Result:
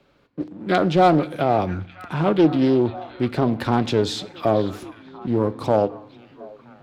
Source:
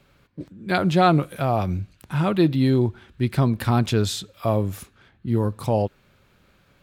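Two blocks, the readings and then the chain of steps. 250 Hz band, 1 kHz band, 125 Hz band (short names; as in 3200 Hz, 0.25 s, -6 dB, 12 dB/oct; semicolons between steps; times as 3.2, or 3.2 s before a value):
+2.0 dB, +3.0 dB, -4.0 dB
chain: bell 2000 Hz -8 dB 2.5 oct; sample leveller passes 1; in parallel at -2.5 dB: compressor, threshold -28 dBFS, peak gain reduction 14.5 dB; on the sum: three-band isolator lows -13 dB, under 240 Hz, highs -18 dB, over 5100 Hz; hard clip -10 dBFS, distortion -27 dB; on a send: delay with a stepping band-pass 0.488 s, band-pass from 2700 Hz, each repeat -0.7 oct, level -11 dB; on the sum: FDN reverb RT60 0.63 s, low-frequency decay 1.5×, high-frequency decay 0.8×, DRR 15.5 dB; Doppler distortion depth 0.27 ms; gain +2.5 dB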